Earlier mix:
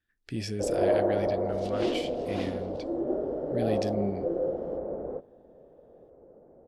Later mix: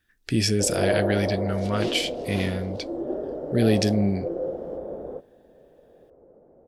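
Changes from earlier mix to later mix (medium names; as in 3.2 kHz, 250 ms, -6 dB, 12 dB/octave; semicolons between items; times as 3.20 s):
speech +10.5 dB; master: add treble shelf 4.4 kHz +6.5 dB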